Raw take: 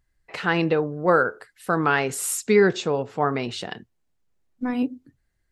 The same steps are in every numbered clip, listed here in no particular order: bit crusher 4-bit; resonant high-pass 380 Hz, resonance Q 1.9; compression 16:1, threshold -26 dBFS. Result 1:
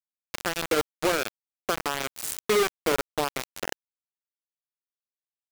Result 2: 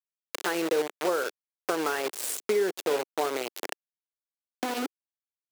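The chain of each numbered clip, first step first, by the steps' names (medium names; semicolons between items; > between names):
compression > resonant high-pass > bit crusher; bit crusher > compression > resonant high-pass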